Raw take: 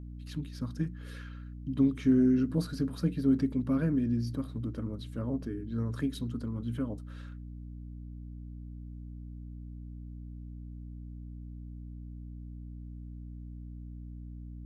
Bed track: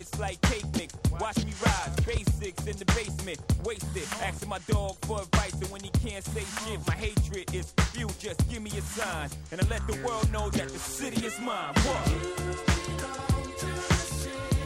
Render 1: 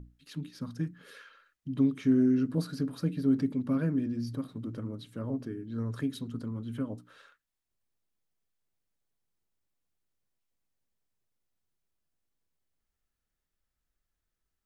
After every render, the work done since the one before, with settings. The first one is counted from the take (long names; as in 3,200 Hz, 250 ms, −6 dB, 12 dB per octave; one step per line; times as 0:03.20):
mains-hum notches 60/120/180/240/300 Hz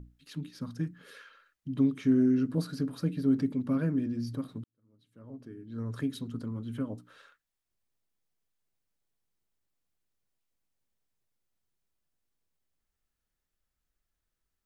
0:04.64–0:06.00: fade in quadratic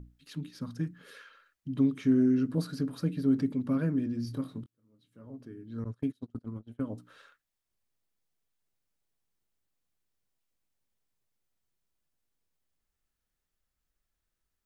0:04.23–0:05.27: double-tracking delay 23 ms −9 dB
0:05.84–0:06.85: noise gate −36 dBFS, range −31 dB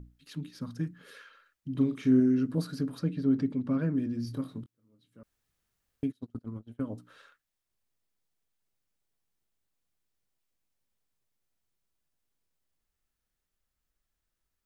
0:01.71–0:02.20: double-tracking delay 39 ms −7.5 dB
0:02.99–0:03.95: high-frequency loss of the air 67 metres
0:05.23–0:06.03: fill with room tone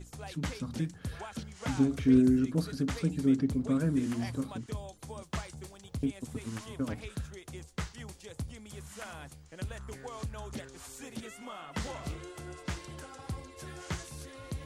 mix in bed track −12 dB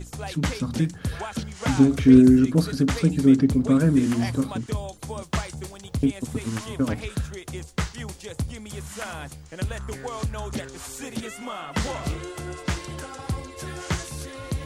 level +10 dB